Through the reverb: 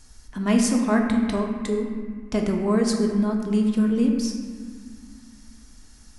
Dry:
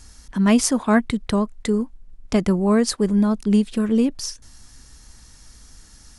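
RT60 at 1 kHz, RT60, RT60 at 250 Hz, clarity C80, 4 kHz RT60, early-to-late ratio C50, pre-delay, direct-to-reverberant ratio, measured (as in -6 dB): 1.7 s, 1.8 s, 2.9 s, 5.0 dB, 1.3 s, 3.5 dB, 3 ms, 1.0 dB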